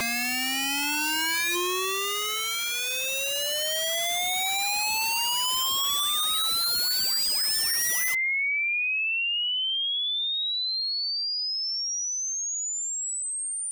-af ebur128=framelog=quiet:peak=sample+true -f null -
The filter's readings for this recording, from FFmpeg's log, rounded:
Integrated loudness:
  I:         -24.3 LUFS
  Threshold: -34.3 LUFS
Loudness range:
  LRA:         3.0 LU
  Threshold: -44.0 LUFS
  LRA low:   -25.6 LUFS
  LRA high:  -22.5 LUFS
Sample peak:
  Peak:      -22.7 dBFS
True peak:
  Peak:      -19.0 dBFS